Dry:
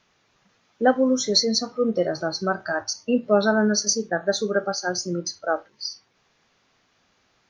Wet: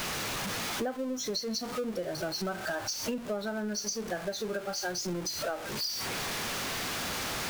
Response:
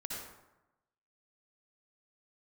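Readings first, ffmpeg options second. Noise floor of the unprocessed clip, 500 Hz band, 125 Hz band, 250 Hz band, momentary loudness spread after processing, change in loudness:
−66 dBFS, −11.5 dB, −6.5 dB, −11.0 dB, 2 LU, −10.0 dB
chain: -af "aeval=exprs='val(0)+0.5*0.0562*sgn(val(0))':channel_layout=same,acompressor=threshold=-27dB:ratio=12,volume=-3.5dB"

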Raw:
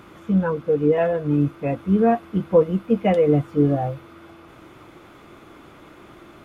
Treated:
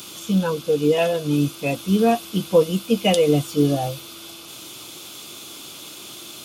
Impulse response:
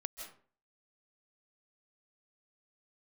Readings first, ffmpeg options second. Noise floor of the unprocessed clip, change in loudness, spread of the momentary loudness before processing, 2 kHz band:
−47 dBFS, 0.0 dB, 6 LU, +3.5 dB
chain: -filter_complex "[0:a]highpass=110,acrossover=split=910[link_01][link_02];[link_02]aexciter=amount=9.1:drive=8.5:freq=2900[link_03];[link_01][link_03]amix=inputs=2:normalize=0"

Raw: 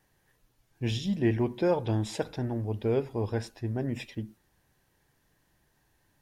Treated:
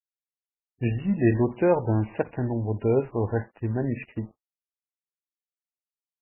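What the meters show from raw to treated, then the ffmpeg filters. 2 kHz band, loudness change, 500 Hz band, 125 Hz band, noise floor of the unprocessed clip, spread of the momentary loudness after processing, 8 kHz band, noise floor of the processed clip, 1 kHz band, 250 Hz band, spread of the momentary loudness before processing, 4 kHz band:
+4.0 dB, +5.0 dB, +5.0 dB, +4.5 dB, −71 dBFS, 10 LU, below −30 dB, below −85 dBFS, +5.0 dB, +4.5 dB, 9 LU, below −15 dB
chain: -af "aresample=8000,aeval=exprs='sgn(val(0))*max(abs(val(0))-0.00266,0)':channel_layout=same,aresample=44100,volume=5.5dB" -ar 11025 -c:a libmp3lame -b:a 8k

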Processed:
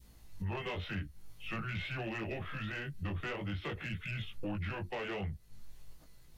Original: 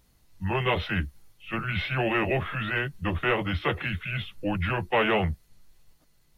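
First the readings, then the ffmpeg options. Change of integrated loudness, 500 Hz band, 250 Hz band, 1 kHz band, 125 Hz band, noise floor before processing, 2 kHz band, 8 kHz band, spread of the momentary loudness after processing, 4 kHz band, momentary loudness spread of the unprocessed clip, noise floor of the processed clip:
−12.0 dB, −14.0 dB, −10.5 dB, −15.0 dB, −9.0 dB, −63 dBFS, −12.5 dB, can't be measured, 4 LU, −11.5 dB, 8 LU, −58 dBFS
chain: -af "flanger=delay=18:depth=2.6:speed=0.49,acompressor=threshold=-45dB:ratio=3,lowshelf=frequency=210:gain=4,asoftclip=type=tanh:threshold=-35dB,adynamicequalizer=threshold=0.00126:dfrequency=1000:dqfactor=0.91:tfrequency=1000:tqfactor=0.91:attack=5:release=100:ratio=0.375:range=2.5:mode=cutabove:tftype=bell,volume=5.5dB"

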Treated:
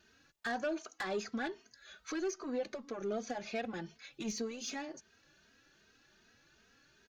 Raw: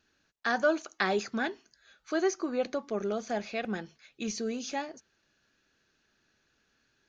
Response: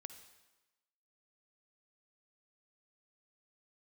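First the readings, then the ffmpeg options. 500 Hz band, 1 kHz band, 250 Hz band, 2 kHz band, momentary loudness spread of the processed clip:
−7.5 dB, −8.0 dB, −6.0 dB, −8.5 dB, 11 LU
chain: -filter_complex "[0:a]acompressor=threshold=-47dB:ratio=2,asoftclip=type=tanh:threshold=-36dB,asplit=2[link_01][link_02];[link_02]adelay=2.9,afreqshift=2.6[link_03];[link_01][link_03]amix=inputs=2:normalize=1,volume=8.5dB"

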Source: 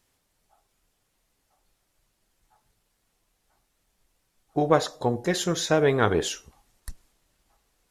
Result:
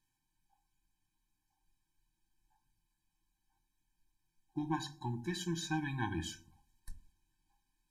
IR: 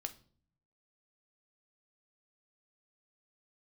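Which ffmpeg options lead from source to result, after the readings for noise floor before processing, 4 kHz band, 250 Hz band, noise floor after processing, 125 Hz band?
−74 dBFS, −13.0 dB, −10.5 dB, −85 dBFS, −9.5 dB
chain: -filter_complex "[0:a]bandreject=frequency=47.67:width_type=h:width=4,bandreject=frequency=95.34:width_type=h:width=4,bandreject=frequency=143.01:width_type=h:width=4,bandreject=frequency=190.68:width_type=h:width=4[link_01];[1:a]atrim=start_sample=2205,asetrate=83790,aresample=44100[link_02];[link_01][link_02]afir=irnorm=-1:irlink=0,afftfilt=real='re*eq(mod(floor(b*sr/1024/370),2),0)':imag='im*eq(mod(floor(b*sr/1024/370),2),0)':win_size=1024:overlap=0.75,volume=-2.5dB"

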